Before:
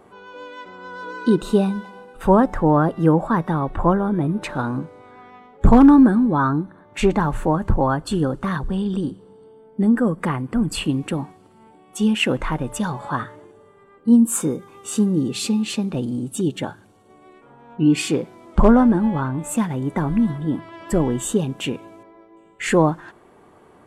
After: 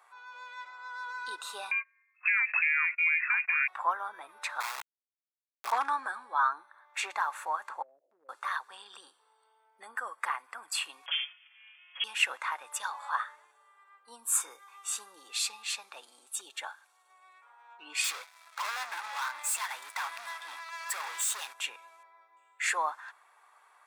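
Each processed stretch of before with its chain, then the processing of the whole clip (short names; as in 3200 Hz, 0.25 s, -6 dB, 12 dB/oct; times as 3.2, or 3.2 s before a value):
1.71–3.68 gate -33 dBFS, range -25 dB + compressor 12:1, threshold -19 dBFS + inverted band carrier 2600 Hz
4.6–5.72 LPF 1200 Hz 24 dB/oct + sample gate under -21.5 dBFS
7.82–8.29 switching spikes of -14 dBFS + steep low-pass 620 Hz 72 dB/oct + compressor 4:1, threshold -32 dBFS
11.06–12.04 minimum comb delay 6.5 ms + inverted band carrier 3300 Hz
18.04–21.54 HPF 1400 Hz 6 dB/oct + sample leveller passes 3 + hard clip -25 dBFS
whole clip: HPF 960 Hz 24 dB/oct; notch 3000 Hz, Q 9.4; gain -3.5 dB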